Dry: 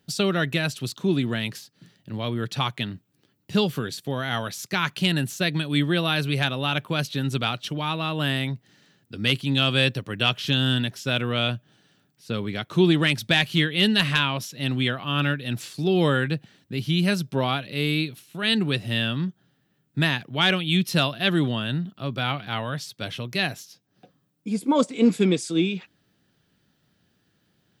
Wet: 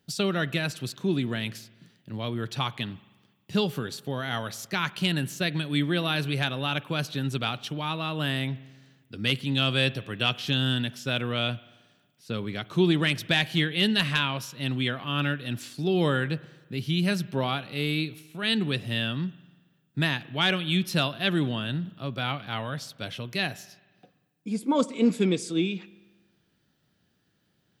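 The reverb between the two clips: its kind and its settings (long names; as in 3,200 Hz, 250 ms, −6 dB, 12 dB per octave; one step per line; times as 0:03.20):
spring reverb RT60 1.3 s, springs 45 ms, chirp 65 ms, DRR 19 dB
level −3.5 dB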